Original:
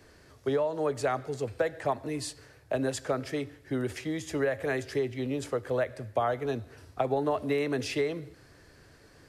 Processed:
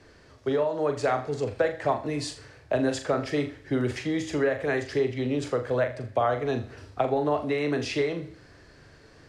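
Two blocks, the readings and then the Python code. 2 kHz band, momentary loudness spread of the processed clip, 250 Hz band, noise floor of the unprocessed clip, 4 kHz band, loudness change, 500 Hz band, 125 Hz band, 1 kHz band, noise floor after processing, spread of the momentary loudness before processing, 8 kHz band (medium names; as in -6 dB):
+4.0 dB, 6 LU, +4.5 dB, -57 dBFS, +3.5 dB, +3.5 dB, +3.5 dB, +4.0 dB, +4.0 dB, -54 dBFS, 7 LU, 0.0 dB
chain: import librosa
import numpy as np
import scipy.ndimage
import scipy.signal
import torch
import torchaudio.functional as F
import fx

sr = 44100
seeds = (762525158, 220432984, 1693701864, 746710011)

p1 = scipy.signal.sosfilt(scipy.signal.butter(2, 6400.0, 'lowpass', fs=sr, output='sos'), x)
p2 = fx.rider(p1, sr, range_db=5, speed_s=0.5)
p3 = p1 + (p2 * librosa.db_to_amplitude(3.0))
p4 = fx.room_flutter(p3, sr, wall_m=7.0, rt60_s=0.31)
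y = p4 * librosa.db_to_amplitude(-4.5)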